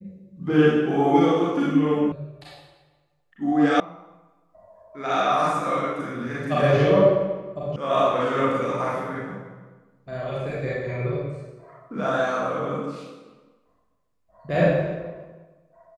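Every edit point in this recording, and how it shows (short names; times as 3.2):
2.12 sound cut off
3.8 sound cut off
7.76 sound cut off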